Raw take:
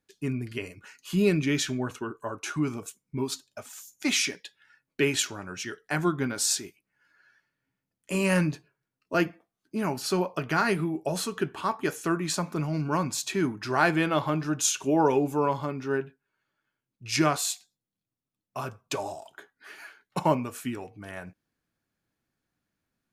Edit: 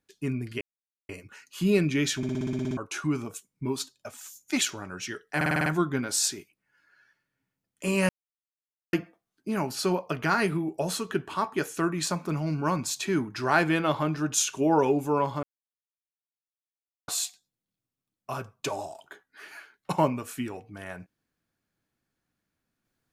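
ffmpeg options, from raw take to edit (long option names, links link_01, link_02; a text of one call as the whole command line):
ffmpeg -i in.wav -filter_complex "[0:a]asplit=23[link_01][link_02][link_03][link_04][link_05][link_06][link_07][link_08][link_09][link_10][link_11][link_12][link_13][link_14][link_15][link_16][link_17][link_18][link_19][link_20][link_21][link_22][link_23];[link_01]atrim=end=0.61,asetpts=PTS-STARTPTS,afade=type=out:start_time=0.606:duration=0.004:curve=hsin,apad=pad_dur=0.48[link_24];[link_02]atrim=start=0.61:end=1.752,asetpts=PTS-STARTPTS,afade=type=in:duration=0.004:curve=hsin[link_25];[link_03]atrim=start=1.688:end=1.752[link_26];[link_04]atrim=start=1.688:end=1.752[link_27];[link_05]atrim=start=1.688:end=1.752[link_28];[link_06]atrim=start=1.688:end=1.752[link_29];[link_07]atrim=start=1.688:end=1.752[link_30];[link_08]atrim=start=1.688:end=1.752[link_31];[link_09]atrim=start=1.688:end=1.752[link_32];[link_10]atrim=start=1.688:end=1.752[link_33];[link_11]atrim=start=1.688:end=1.752[link_34];[link_12]atrim=start=2.288:end=4.132[link_35];[link_13]atrim=start=5.178:end=5.982[link_36];[link_14]atrim=start=5.928:end=5.982[link_37];[link_15]atrim=start=5.928:end=5.982[link_38];[link_16]atrim=start=5.928:end=5.982[link_39];[link_17]atrim=start=5.928:end=5.982[link_40];[link_18]atrim=start=5.928:end=5.982[link_41];[link_19]atrim=start=5.928:end=8.36,asetpts=PTS-STARTPTS,afade=type=out:start_time=2.428:duration=0.004:curve=hsin[link_42];[link_20]atrim=start=8.36:end=9.2,asetpts=PTS-STARTPTS,volume=0[link_43];[link_21]atrim=start=9.2:end=15.7,asetpts=PTS-STARTPTS,afade=type=in:duration=0.004:curve=hsin,afade=type=out:start_time=6.496:duration=0.004:curve=hsin[link_44];[link_22]atrim=start=15.7:end=17.35,asetpts=PTS-STARTPTS,volume=0[link_45];[link_23]atrim=start=17.35,asetpts=PTS-STARTPTS,afade=type=in:duration=0.004:curve=hsin[link_46];[link_24][link_25]concat=n=2:v=0:a=1[link_47];[link_47][link_26]acrossfade=duration=0.004:curve1=hsin:curve2=hsin[link_48];[link_48][link_27]acrossfade=duration=0.004:curve1=hsin:curve2=hsin[link_49];[link_49][link_28]acrossfade=duration=0.004:curve1=hsin:curve2=hsin[link_50];[link_50][link_29]acrossfade=duration=0.004:curve1=hsin:curve2=hsin[link_51];[link_51][link_30]acrossfade=duration=0.004:curve1=hsin:curve2=hsin[link_52];[link_52][link_31]acrossfade=duration=0.004:curve1=hsin:curve2=hsin[link_53];[link_53][link_32]acrossfade=duration=0.004:curve1=hsin:curve2=hsin[link_54];[link_54][link_33]acrossfade=duration=0.004:curve1=hsin:curve2=hsin[link_55];[link_55][link_34]acrossfade=duration=0.004:curve1=hsin:curve2=hsin[link_56];[link_56][link_35]acrossfade=duration=0.004:curve1=hsin:curve2=hsin[link_57];[link_57][link_36]acrossfade=duration=0.004:curve1=hsin:curve2=hsin[link_58];[link_58][link_37]acrossfade=duration=0.004:curve1=hsin:curve2=hsin[link_59];[link_59][link_38]acrossfade=duration=0.004:curve1=hsin:curve2=hsin[link_60];[link_60][link_39]acrossfade=duration=0.004:curve1=hsin:curve2=hsin[link_61];[link_61][link_40]acrossfade=duration=0.004:curve1=hsin:curve2=hsin[link_62];[link_62][link_41]acrossfade=duration=0.004:curve1=hsin:curve2=hsin[link_63];[link_42][link_43][link_44][link_45][link_46]concat=n=5:v=0:a=1[link_64];[link_63][link_64]acrossfade=duration=0.004:curve1=hsin:curve2=hsin" out.wav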